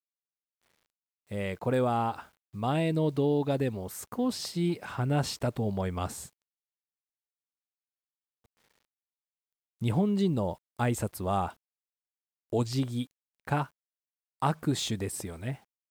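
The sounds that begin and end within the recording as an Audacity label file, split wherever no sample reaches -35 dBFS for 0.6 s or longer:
1.310000	6.240000	sound
9.820000	11.490000	sound
12.530000	13.640000	sound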